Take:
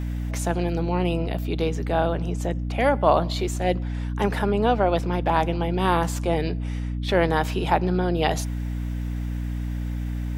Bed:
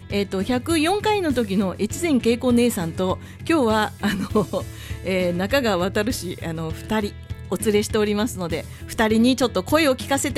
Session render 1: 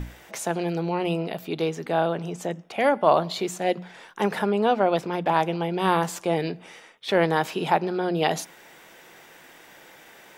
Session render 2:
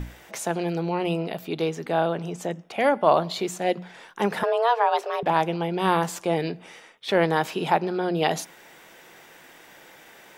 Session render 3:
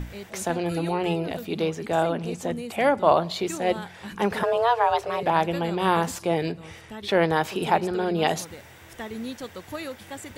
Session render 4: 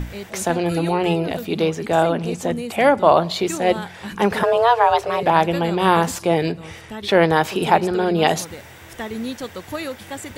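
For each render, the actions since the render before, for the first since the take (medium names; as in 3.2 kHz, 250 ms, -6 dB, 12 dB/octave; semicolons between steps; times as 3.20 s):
hum notches 60/120/180/240/300 Hz
4.43–5.23 s: frequency shift +230 Hz
add bed -17 dB
trim +6 dB; peak limiter -1 dBFS, peak gain reduction 2.5 dB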